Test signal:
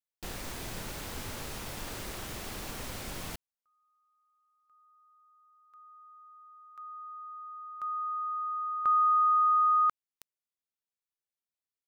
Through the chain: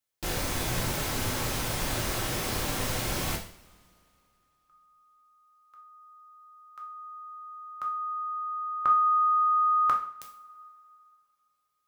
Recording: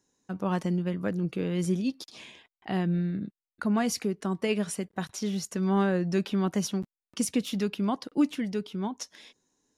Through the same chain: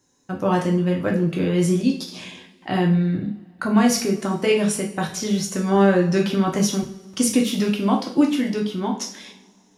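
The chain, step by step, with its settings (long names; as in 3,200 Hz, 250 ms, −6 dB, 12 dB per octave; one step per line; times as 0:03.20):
coupled-rooms reverb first 0.45 s, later 2.7 s, from −26 dB, DRR 0 dB
level +6.5 dB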